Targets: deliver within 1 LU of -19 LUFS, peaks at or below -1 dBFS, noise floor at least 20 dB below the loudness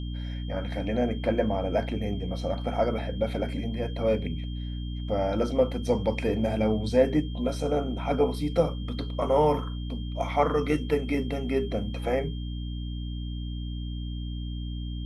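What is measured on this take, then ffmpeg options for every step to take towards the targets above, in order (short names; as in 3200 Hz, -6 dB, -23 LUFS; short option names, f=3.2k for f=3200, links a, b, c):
hum 60 Hz; harmonics up to 300 Hz; hum level -31 dBFS; steady tone 3200 Hz; tone level -47 dBFS; loudness -28.5 LUFS; peak -9.0 dBFS; loudness target -19.0 LUFS
-> -af "bandreject=f=60:t=h:w=4,bandreject=f=120:t=h:w=4,bandreject=f=180:t=h:w=4,bandreject=f=240:t=h:w=4,bandreject=f=300:t=h:w=4"
-af "bandreject=f=3.2k:w=30"
-af "volume=9.5dB,alimiter=limit=-1dB:level=0:latency=1"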